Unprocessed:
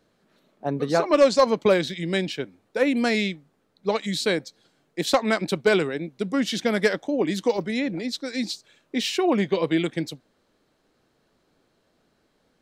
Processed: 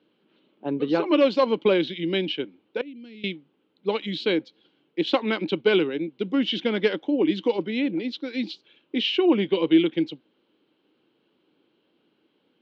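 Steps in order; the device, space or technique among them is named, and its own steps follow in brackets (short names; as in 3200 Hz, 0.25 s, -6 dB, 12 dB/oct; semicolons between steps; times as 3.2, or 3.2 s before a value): 2.81–3.24 passive tone stack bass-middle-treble 10-0-1; kitchen radio (speaker cabinet 200–3500 Hz, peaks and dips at 320 Hz +7 dB, 670 Hz -10 dB, 1200 Hz -5 dB, 1800 Hz -8 dB, 3000 Hz +9 dB)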